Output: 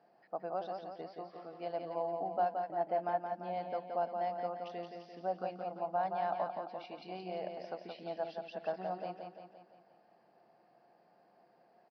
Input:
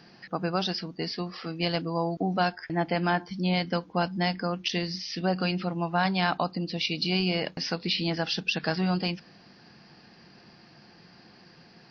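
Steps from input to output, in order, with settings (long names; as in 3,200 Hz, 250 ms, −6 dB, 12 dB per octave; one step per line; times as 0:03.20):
resonant band-pass 660 Hz, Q 3.6
on a send: repeating echo 172 ms, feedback 53%, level −5.5 dB
on the sum: level −2.5 dB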